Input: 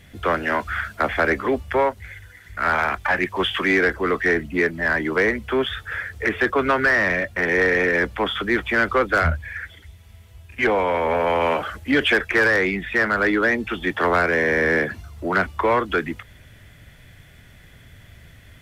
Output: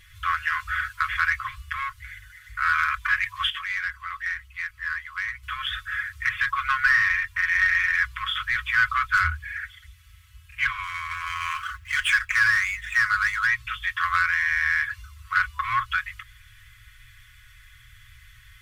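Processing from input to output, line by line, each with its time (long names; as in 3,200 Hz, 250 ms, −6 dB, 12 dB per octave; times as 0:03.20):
0:03.50–0:05.43: clip gain −7 dB
0:10.83–0:13.47: running median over 9 samples
whole clip: brick-wall band-stop 120–1,000 Hz; comb filter 5.4 ms, depth 62%; level −2 dB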